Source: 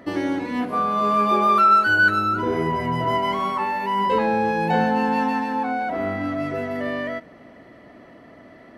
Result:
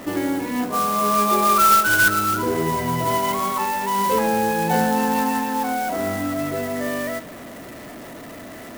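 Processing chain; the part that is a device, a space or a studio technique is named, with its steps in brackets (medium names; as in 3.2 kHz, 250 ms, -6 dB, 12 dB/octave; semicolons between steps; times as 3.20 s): early CD player with a faulty converter (jump at every zero crossing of -34.5 dBFS; sampling jitter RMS 0.042 ms)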